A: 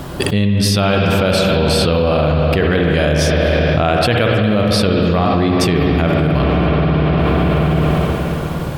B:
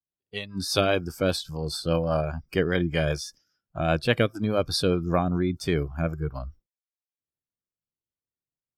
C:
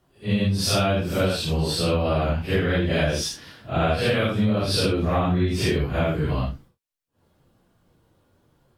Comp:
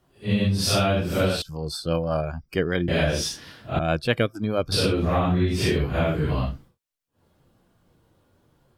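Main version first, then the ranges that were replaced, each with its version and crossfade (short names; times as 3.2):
C
1.42–2.88 from B
3.79–4.72 from B
not used: A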